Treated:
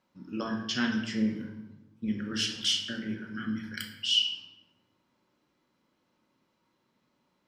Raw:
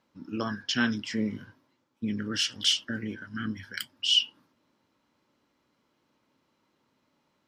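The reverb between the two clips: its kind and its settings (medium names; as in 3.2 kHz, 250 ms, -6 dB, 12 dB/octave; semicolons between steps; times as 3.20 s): simulated room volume 410 m³, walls mixed, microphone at 0.97 m; trim -4 dB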